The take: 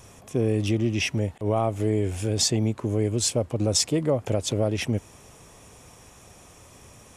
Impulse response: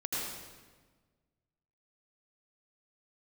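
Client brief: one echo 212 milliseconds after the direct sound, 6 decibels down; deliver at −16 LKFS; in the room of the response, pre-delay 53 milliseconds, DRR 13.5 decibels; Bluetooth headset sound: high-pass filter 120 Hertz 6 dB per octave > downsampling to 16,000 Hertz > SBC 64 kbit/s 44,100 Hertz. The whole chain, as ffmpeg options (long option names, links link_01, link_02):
-filter_complex "[0:a]aecho=1:1:212:0.501,asplit=2[link_01][link_02];[1:a]atrim=start_sample=2205,adelay=53[link_03];[link_02][link_03]afir=irnorm=-1:irlink=0,volume=-18.5dB[link_04];[link_01][link_04]amix=inputs=2:normalize=0,highpass=frequency=120:poles=1,aresample=16000,aresample=44100,volume=9dB" -ar 44100 -c:a sbc -b:a 64k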